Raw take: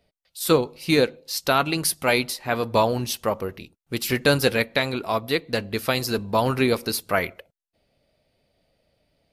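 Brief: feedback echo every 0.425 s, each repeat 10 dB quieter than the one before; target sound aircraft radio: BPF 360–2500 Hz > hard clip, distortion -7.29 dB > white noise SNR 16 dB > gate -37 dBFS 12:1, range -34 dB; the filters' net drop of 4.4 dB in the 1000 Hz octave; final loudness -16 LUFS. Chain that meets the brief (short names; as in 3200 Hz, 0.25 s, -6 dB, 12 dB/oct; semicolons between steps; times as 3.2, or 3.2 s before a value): BPF 360–2500 Hz; bell 1000 Hz -5.5 dB; feedback echo 0.425 s, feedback 32%, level -10 dB; hard clip -23.5 dBFS; white noise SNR 16 dB; gate -37 dBFS 12:1, range -34 dB; gain +14.5 dB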